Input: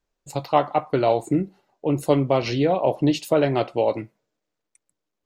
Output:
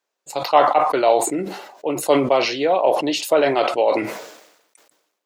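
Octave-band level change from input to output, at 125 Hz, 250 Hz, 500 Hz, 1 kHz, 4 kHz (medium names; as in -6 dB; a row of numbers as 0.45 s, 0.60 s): -10.5 dB, -1.5 dB, +4.0 dB, +6.5 dB, +7.5 dB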